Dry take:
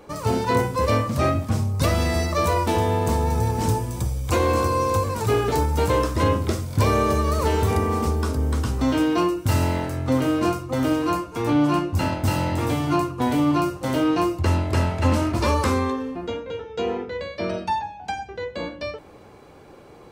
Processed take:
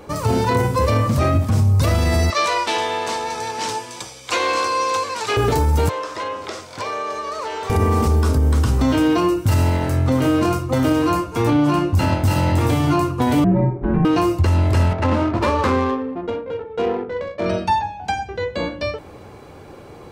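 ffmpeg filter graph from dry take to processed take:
-filter_complex "[0:a]asettb=1/sr,asplit=3[a][b][c];[a]atrim=end=2.304[d];[b]atrim=start=2.3:end=5.37,asetpts=PTS-STARTPTS,afade=t=in:d=0.004:c=qsin,afade=t=out:st=3.066:d=0.004:c=qsin,tiltshelf=f=1.4k:g=-8,aeval=exprs='0.178*(abs(mod(val(0)/0.178+3,4)-2)-1)':c=same,highpass=390,lowpass=4.7k[e];[c]atrim=start=5.366[f];[d][e]acrossfade=d=0.004:c1=hsin:c2=qsin[g];[g][f]acrossfade=d=0.004:c1=qsin:c2=hsin,asettb=1/sr,asplit=3[h][i][j];[h]atrim=end=5.894[k];[i]atrim=start=5.89:end=7.7,asetpts=PTS-STARTPTS,afade=t=in:d=0.004:c=qsin,afade=t=out:st=1.806:d=0.004:c=qsin,acrossover=split=460 7200:gain=0.0794 1 0.0891[l][m][n];[l][m][n]amix=inputs=3:normalize=0,acompressor=threshold=-32dB:ratio=2.5:attack=3.2:release=140:knee=1:detection=peak,highpass=150[o];[j]atrim=start=7.696[p];[k][o]acrossfade=d=0.004:c1=hsin:c2=qsin[q];[q][p]acrossfade=d=0.004:c1=qsin:c2=hsin,asettb=1/sr,asplit=3[r][s][t];[r]atrim=end=13.444[u];[s]atrim=start=13.44:end=14.05,asetpts=PTS-STARTPTS,afade=t=in:d=0.004:c=qsin,afade=t=out:st=0.606:d=0.004:c=qsin,lowpass=f=1.9k:w=0.5412,lowpass=f=1.9k:w=1.3066,afreqshift=-480[v];[t]atrim=start=14.046[w];[u][v]acrossfade=d=0.004:c1=hsin:c2=qsin[x];[x][w]acrossfade=d=0.004:c1=qsin:c2=hsin,asettb=1/sr,asplit=3[y][z][aa];[y]atrim=end=14.934[ab];[z]atrim=start=14.93:end=17.46,asetpts=PTS-STARTPTS,afade=t=in:d=0.004:c=qsin,afade=t=out:st=2.526:d=0.004:c=qsin,highpass=f=250:p=1,adynamicsmooth=sensitivity=2:basefreq=970[ac];[aa]atrim=start=17.456[ad];[ab][ac]acrossfade=d=0.004:c1=hsin:c2=qsin[ae];[ae][ad]acrossfade=d=0.004:c1=qsin:c2=hsin,equalizer=f=93:t=o:w=0.91:g=5,alimiter=limit=-15dB:level=0:latency=1:release=47,volume=6dB"

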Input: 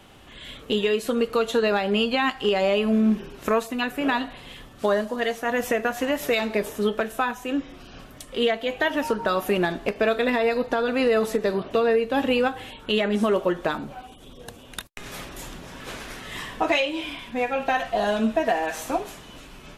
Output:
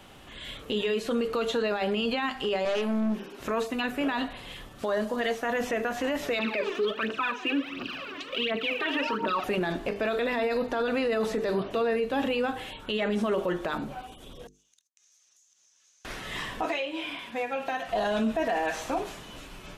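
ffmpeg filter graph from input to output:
-filter_complex "[0:a]asettb=1/sr,asplit=3[a][b][c];[a]atrim=end=2.654[d];[b]atrim=start=2.65:end=3.4,asetpts=PTS-STARTPTS,afade=t=in:d=0.004:c=qsin,afade=t=out:st=0.746:d=0.004:c=qsin,highpass=f=200:w=0.5412,highpass=f=200:w=1.3066,aeval=exprs='(tanh(15.8*val(0)+0.3)-tanh(0.3))/15.8':c=same[e];[c]atrim=start=3.396[f];[d][e]acrossfade=d=0.004:c1=hsin:c2=qsin[g];[g][f]acrossfade=d=0.004:c1=qsin:c2=hsin,asettb=1/sr,asplit=3[h][i][j];[h]atrim=end=6.394[k];[i]atrim=start=6.39:end=9.44,asetpts=PTS-STARTPTS,afade=t=in:d=0.004:c=qsin,afade=t=out:st=3.046:d=0.004:c=qsin,acompressor=mode=upward:threshold=-32dB:ratio=2.5:attack=3.2:release=140:knee=2.83:detection=peak,highpass=270,equalizer=f=270:t=q:w=4:g=8,equalizer=f=750:t=q:w=4:g=-8,equalizer=f=1.2k:t=q:w=4:g=5,equalizer=f=2.6k:t=q:w=4:g=9,lowpass=f=4.5k:w=0.5412,lowpass=f=4.5k:w=1.3066,aphaser=in_gain=1:out_gain=1:delay=3:decay=0.76:speed=1.4:type=triangular[l];[j]atrim=start=9.436[m];[k][l]acrossfade=d=0.004:c1=hsin:c2=qsin[n];[n][m]acrossfade=d=0.004:c1=qsin:c2=hsin,asettb=1/sr,asplit=3[o][p][q];[o]atrim=end=14.474[r];[p]atrim=start=14.47:end=16.05,asetpts=PTS-STARTPTS,afade=t=in:d=0.004:c=qsin,afade=t=out:st=1.576:d=0.004:c=qsin,bandpass=f=6.3k:t=q:w=8.2,acompressor=threshold=-60dB:ratio=10:attack=3.2:release=140:knee=1:detection=peak[s];[q]atrim=start=16.046[t];[r][s]acrossfade=d=0.004:c1=hsin:c2=qsin[u];[u][t]acrossfade=d=0.004:c1=qsin:c2=hsin,asettb=1/sr,asplit=3[v][w][x];[v]atrim=end=16.654[y];[w]atrim=start=16.65:end=17.89,asetpts=PTS-STARTPTS,afade=t=in:d=0.004:c=qsin,afade=t=out:st=1.236:d=0.004:c=qsin,highpass=f=290:p=1,acrossover=split=390|3400[z][aa][ab];[z]acompressor=threshold=-37dB:ratio=4[ac];[aa]acompressor=threshold=-30dB:ratio=4[ad];[ab]acompressor=threshold=-49dB:ratio=4[ae];[ac][ad][ae]amix=inputs=3:normalize=0[af];[x]atrim=start=17.886[ag];[y][af]acrossfade=d=0.004:c1=hsin:c2=qsin[ah];[ah][ag]acrossfade=d=0.004:c1=qsin:c2=hsin,acrossover=split=6300[ai][aj];[aj]acompressor=threshold=-52dB:ratio=4:attack=1:release=60[ak];[ai][ak]amix=inputs=2:normalize=0,bandreject=f=50:t=h:w=6,bandreject=f=100:t=h:w=6,bandreject=f=150:t=h:w=6,bandreject=f=200:t=h:w=6,bandreject=f=250:t=h:w=6,bandreject=f=300:t=h:w=6,bandreject=f=350:t=h:w=6,bandreject=f=400:t=h:w=6,bandreject=f=450:t=h:w=6,alimiter=limit=-20dB:level=0:latency=1:release=17"

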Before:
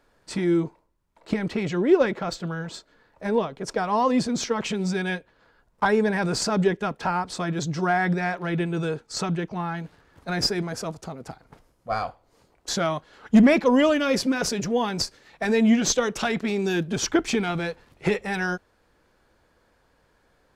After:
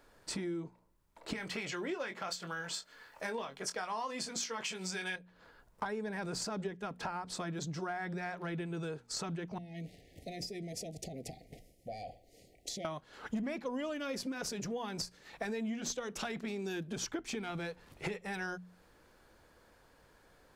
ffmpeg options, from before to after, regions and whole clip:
-filter_complex "[0:a]asettb=1/sr,asplit=3[a][b][c];[a]atrim=end=1.334[d];[b]atrim=start=1.33:end=5.16,asetpts=PTS-STARTPTS,afade=t=in:d=0.004:c=qsin,afade=t=out:st=3.826:d=0.004:c=qsin,tiltshelf=f=690:g=-8,bandreject=f=3.8k:w=15,asplit=2[e][f];[f]adelay=22,volume=-8.5dB[g];[e][g]amix=inputs=2:normalize=0,atrim=end_sample=168903[h];[c]atrim=start=5.156[i];[d][h]acrossfade=d=0.004:c1=hsin:c2=qsin[j];[j][i]acrossfade=d=0.004:c1=qsin:c2=hsin,asettb=1/sr,asplit=3[k][l][m];[k]atrim=end=9.584[n];[l]atrim=start=9.58:end=12.85,asetpts=PTS-STARTPTS,afade=t=in:d=0.004:c=qsin,afade=t=out:st=3.266:d=0.004:c=qsin,acompressor=threshold=-37dB:ratio=8:attack=3.2:release=140:knee=1:detection=peak,asuperstop=centerf=1200:order=20:qfactor=1.1[o];[m]atrim=start=12.846[p];[n][o]acrossfade=d=0.004:c1=hsin:c2=qsin[q];[q][p]acrossfade=d=0.004:c1=qsin:c2=hsin,highshelf=f=8.5k:g=6.5,bandreject=f=60:t=h:w=6,bandreject=f=120:t=h:w=6,bandreject=f=180:t=h:w=6,bandreject=f=240:t=h:w=6,acompressor=threshold=-38dB:ratio=5"

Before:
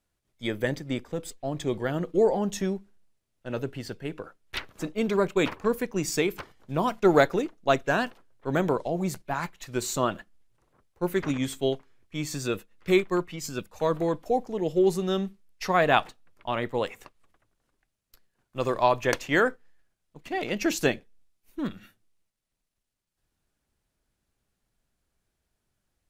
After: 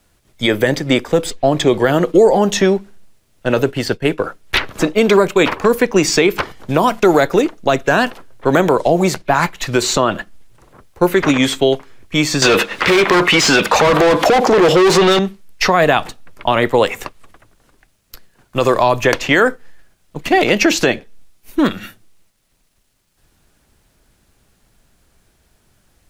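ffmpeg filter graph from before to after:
-filter_complex "[0:a]asettb=1/sr,asplit=3[a][b][c];[a]atrim=end=3.614[d];[b]atrim=start=3.61:end=4.22,asetpts=PTS-STARTPTS,afade=t=in:d=0.004:c=qsin,afade=t=out:st=0.606:d=0.004:c=qsin,agate=range=-33dB:threshold=-37dB:ratio=3:release=100:detection=peak,acompressor=mode=upward:threshold=-34dB:ratio=2.5:attack=3.2:release=140:knee=2.83:detection=peak[e];[c]atrim=start=4.216[f];[d][e]acrossfade=d=0.004:c1=hsin:c2=qsin[g];[g][f]acrossfade=d=0.004:c1=qsin:c2=hsin,asettb=1/sr,asplit=3[h][i][j];[h]atrim=end=12.424[k];[i]atrim=start=12.42:end=15.19,asetpts=PTS-STARTPTS,afade=t=in:d=0.004:c=qsin,afade=t=out:st=2.766:d=0.004:c=qsin,asplit=2[l][m];[m]highpass=f=720:p=1,volume=35dB,asoftclip=type=tanh:threshold=-9dB[n];[l][n]amix=inputs=2:normalize=0,lowpass=f=4.5k:p=1,volume=-6dB,acompressor=threshold=-27dB:ratio=4:attack=3.2:release=140:knee=1:detection=peak[o];[j]atrim=start=15.186[p];[k][o]acrossfade=d=0.004:c1=hsin:c2=qsin[q];[q][p]acrossfade=d=0.004:c1=qsin:c2=hsin,acrossover=split=320|5600[r][s][t];[r]acompressor=threshold=-42dB:ratio=4[u];[s]acompressor=threshold=-30dB:ratio=4[v];[t]acompressor=threshold=-55dB:ratio=4[w];[u][v][w]amix=inputs=3:normalize=0,alimiter=level_in=22dB:limit=-1dB:release=50:level=0:latency=1,volume=-1dB"

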